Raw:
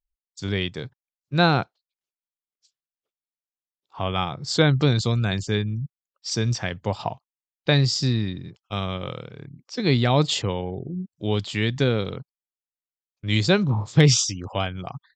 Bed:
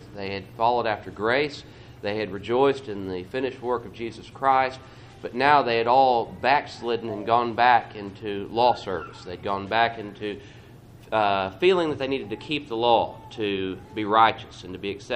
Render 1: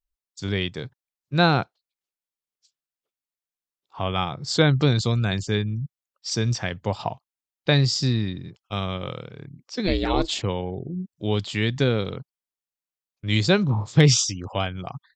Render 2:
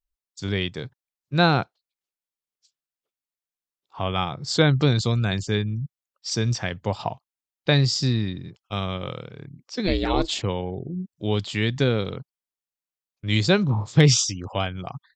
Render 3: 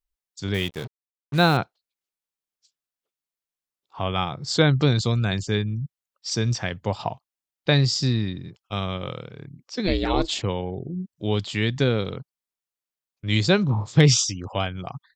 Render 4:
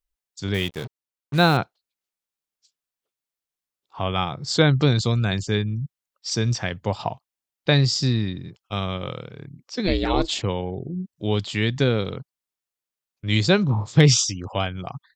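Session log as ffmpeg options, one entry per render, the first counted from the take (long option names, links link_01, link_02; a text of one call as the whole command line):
ffmpeg -i in.wav -filter_complex "[0:a]asplit=3[link_01][link_02][link_03];[link_01]afade=type=out:start_time=9.86:duration=0.02[link_04];[link_02]aeval=exprs='val(0)*sin(2*PI*180*n/s)':channel_layout=same,afade=type=in:start_time=9.86:duration=0.02,afade=type=out:start_time=10.42:duration=0.02[link_05];[link_03]afade=type=in:start_time=10.42:duration=0.02[link_06];[link_04][link_05][link_06]amix=inputs=3:normalize=0" out.wav
ffmpeg -i in.wav -af anull out.wav
ffmpeg -i in.wav -filter_complex "[0:a]asettb=1/sr,asplit=3[link_01][link_02][link_03];[link_01]atrim=end=0.544[link_04];[link_02]atrim=start=0.54:end=1.57,asetpts=PTS-STARTPTS,afade=type=in:duration=0.004:curve=qsin,afade=type=out:start_time=1.026:duration=0.004:curve=qsin,acrusher=bits=5:mix=0:aa=0.5[link_05];[link_03]atrim=start=1.566[link_06];[link_04][link_05]acrossfade=duration=0.004:curve1=hsin:curve2=qsin[link_07];[link_07][link_06]acrossfade=duration=0.004:curve1=qsin:curve2=hsin" out.wav
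ffmpeg -i in.wav -af "volume=1dB" out.wav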